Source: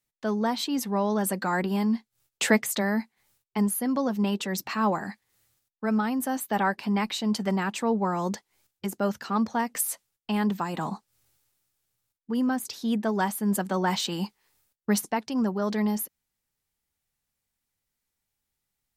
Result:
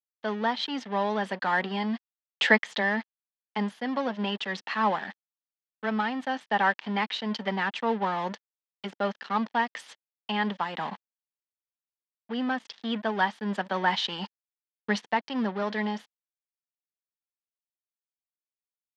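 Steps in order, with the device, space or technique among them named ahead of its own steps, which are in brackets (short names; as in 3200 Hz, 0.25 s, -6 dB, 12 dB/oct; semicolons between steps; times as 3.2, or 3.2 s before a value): 15.13–15.63 bell 79 Hz +4.5 dB 2.6 oct; blown loudspeaker (crossover distortion -40 dBFS; speaker cabinet 230–4800 Hz, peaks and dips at 330 Hz -7 dB, 870 Hz +4 dB, 1800 Hz +8 dB, 3200 Hz +8 dB)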